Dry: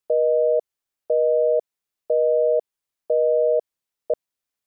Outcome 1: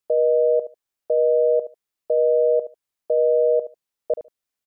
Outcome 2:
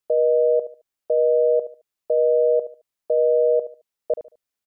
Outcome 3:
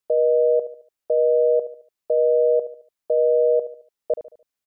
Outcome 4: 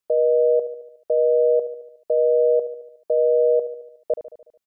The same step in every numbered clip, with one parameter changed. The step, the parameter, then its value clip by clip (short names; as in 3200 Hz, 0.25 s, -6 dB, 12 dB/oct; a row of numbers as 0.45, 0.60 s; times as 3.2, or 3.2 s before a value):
feedback echo, feedback: 15, 26, 39, 58%